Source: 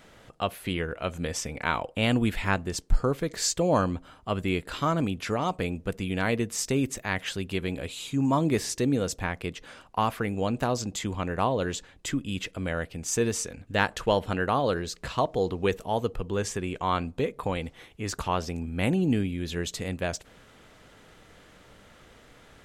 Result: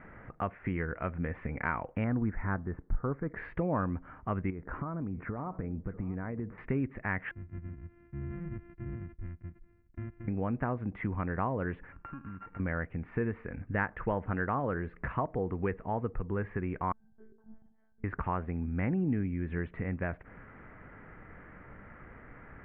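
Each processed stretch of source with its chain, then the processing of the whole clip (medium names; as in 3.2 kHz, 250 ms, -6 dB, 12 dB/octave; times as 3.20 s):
2.04–3.36 s: low-pass 1.7 kHz 24 dB/octave + transient shaper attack -6 dB, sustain -1 dB
4.50–6.58 s: compression 10:1, threshold -31 dBFS + low-pass 1.2 kHz + delay 643 ms -18 dB
7.31–10.28 s: sorted samples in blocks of 128 samples + amplifier tone stack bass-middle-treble 10-0-1
11.92–12.60 s: sorted samples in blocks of 32 samples + compression 12:1, threshold -43 dBFS
16.92–18.04 s: compression 5:1, threshold -40 dBFS + pitch-class resonator G, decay 0.54 s + monotone LPC vocoder at 8 kHz 220 Hz
whole clip: steep low-pass 2.1 kHz 48 dB/octave; peaking EQ 560 Hz -6.5 dB 1.5 oct; compression 2:1, threshold -40 dBFS; trim +5.5 dB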